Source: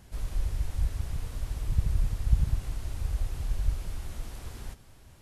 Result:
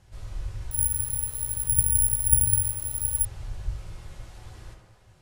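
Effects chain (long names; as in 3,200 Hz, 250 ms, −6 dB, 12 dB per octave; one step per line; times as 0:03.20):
low-pass filter 8,900 Hz 12 dB per octave
parametric band 270 Hz −10 dB 0.4 octaves
tape delay 69 ms, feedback 80%, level −5.5 dB, low-pass 2,700 Hz
convolution reverb RT60 0.35 s, pre-delay 4 ms, DRR 5 dB
0:00.71–0:03.25: bad sample-rate conversion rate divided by 4×, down none, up zero stuff
level −4.5 dB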